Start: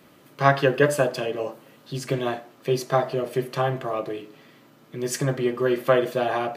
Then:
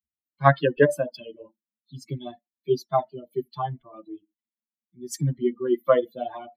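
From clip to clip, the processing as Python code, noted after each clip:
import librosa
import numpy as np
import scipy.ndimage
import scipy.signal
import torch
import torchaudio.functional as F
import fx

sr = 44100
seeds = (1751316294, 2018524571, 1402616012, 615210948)

y = fx.bin_expand(x, sr, power=3.0)
y = fx.high_shelf(y, sr, hz=2400.0, db=-8.0)
y = fx.notch(y, sr, hz=2400.0, q=6.5)
y = F.gain(torch.from_numpy(y), 5.0).numpy()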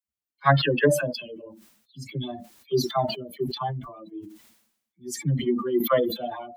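y = fx.dynamic_eq(x, sr, hz=580.0, q=1.3, threshold_db=-29.0, ratio=4.0, max_db=-4)
y = fx.dispersion(y, sr, late='lows', ms=48.0, hz=670.0)
y = fx.sustainer(y, sr, db_per_s=73.0)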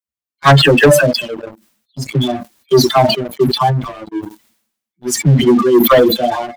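y = fx.leveller(x, sr, passes=3)
y = F.gain(torch.from_numpy(y), 5.0).numpy()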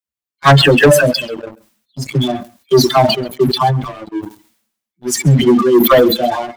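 y = x + 10.0 ** (-22.5 / 20.0) * np.pad(x, (int(134 * sr / 1000.0), 0))[:len(x)]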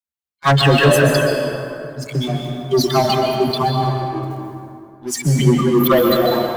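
y = fx.rev_plate(x, sr, seeds[0], rt60_s=2.6, hf_ratio=0.5, predelay_ms=115, drr_db=1.0)
y = F.gain(torch.from_numpy(y), -6.0).numpy()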